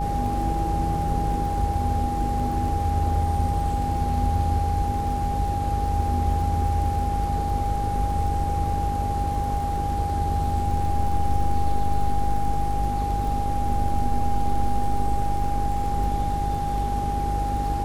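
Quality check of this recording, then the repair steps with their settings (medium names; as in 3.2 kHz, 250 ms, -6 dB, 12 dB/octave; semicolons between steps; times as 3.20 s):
buzz 50 Hz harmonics 9 -28 dBFS
crackle 35 per s -32 dBFS
whine 810 Hz -26 dBFS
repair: de-click; de-hum 50 Hz, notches 9; band-stop 810 Hz, Q 30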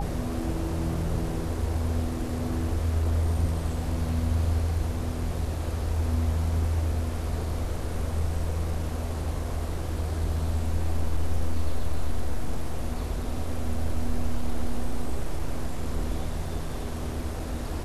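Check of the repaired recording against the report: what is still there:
nothing left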